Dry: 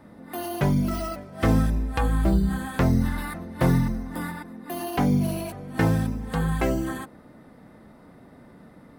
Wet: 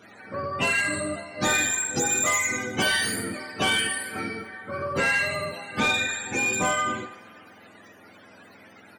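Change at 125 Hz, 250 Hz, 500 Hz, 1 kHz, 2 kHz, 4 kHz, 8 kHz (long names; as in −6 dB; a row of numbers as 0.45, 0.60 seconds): −14.0, −9.0, −0.5, +2.5, +12.0, +13.5, +17.0 decibels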